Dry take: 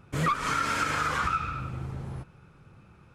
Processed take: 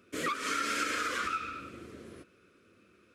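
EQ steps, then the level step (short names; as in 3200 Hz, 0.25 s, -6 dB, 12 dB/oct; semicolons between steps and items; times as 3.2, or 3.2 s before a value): HPF 180 Hz 12 dB/oct; fixed phaser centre 350 Hz, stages 4; 0.0 dB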